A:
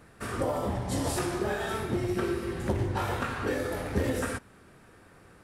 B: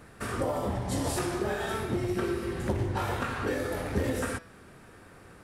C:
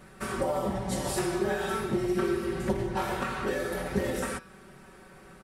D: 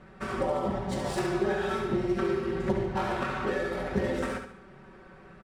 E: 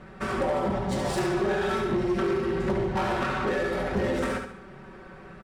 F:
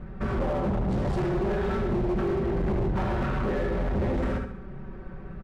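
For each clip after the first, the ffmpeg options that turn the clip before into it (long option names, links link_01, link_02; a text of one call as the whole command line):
ffmpeg -i in.wav -filter_complex "[0:a]bandreject=frequency=165.2:width_type=h:width=4,bandreject=frequency=330.4:width_type=h:width=4,bandreject=frequency=495.6:width_type=h:width=4,bandreject=frequency=660.8:width_type=h:width=4,bandreject=frequency=826:width_type=h:width=4,bandreject=frequency=991.2:width_type=h:width=4,bandreject=frequency=1156.4:width_type=h:width=4,bandreject=frequency=1321.6:width_type=h:width=4,bandreject=frequency=1486.8:width_type=h:width=4,bandreject=frequency=1652:width_type=h:width=4,bandreject=frequency=1817.2:width_type=h:width=4,bandreject=frequency=1982.4:width_type=h:width=4,bandreject=frequency=2147.6:width_type=h:width=4,bandreject=frequency=2312.8:width_type=h:width=4,bandreject=frequency=2478:width_type=h:width=4,bandreject=frequency=2643.2:width_type=h:width=4,bandreject=frequency=2808.4:width_type=h:width=4,bandreject=frequency=2973.6:width_type=h:width=4,bandreject=frequency=3138.8:width_type=h:width=4,bandreject=frequency=3304:width_type=h:width=4,bandreject=frequency=3469.2:width_type=h:width=4,bandreject=frequency=3634.4:width_type=h:width=4,bandreject=frequency=3799.6:width_type=h:width=4,bandreject=frequency=3964.8:width_type=h:width=4,bandreject=frequency=4130:width_type=h:width=4,bandreject=frequency=4295.2:width_type=h:width=4,bandreject=frequency=4460.4:width_type=h:width=4,bandreject=frequency=4625.6:width_type=h:width=4,bandreject=frequency=4790.8:width_type=h:width=4,bandreject=frequency=4956:width_type=h:width=4,bandreject=frequency=5121.2:width_type=h:width=4,bandreject=frequency=5286.4:width_type=h:width=4,bandreject=frequency=5451.6:width_type=h:width=4,bandreject=frequency=5616.8:width_type=h:width=4,bandreject=frequency=5782:width_type=h:width=4,asplit=2[link_01][link_02];[link_02]acompressor=threshold=-38dB:ratio=6,volume=0dB[link_03];[link_01][link_03]amix=inputs=2:normalize=0,volume=-2.5dB" out.wav
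ffmpeg -i in.wav -af "aecho=1:1:5.3:0.84,volume=-1.5dB" out.wav
ffmpeg -i in.wav -af "adynamicsmooth=sensitivity=7:basefreq=3300,aecho=1:1:71|142|213|284:0.447|0.17|0.0645|0.0245" out.wav
ffmpeg -i in.wav -af "asoftclip=type=tanh:threshold=-26dB,volume=5.5dB" out.wav
ffmpeg -i in.wav -af "aemphasis=mode=reproduction:type=riaa,volume=20.5dB,asoftclip=hard,volume=-20.5dB,volume=-3dB" out.wav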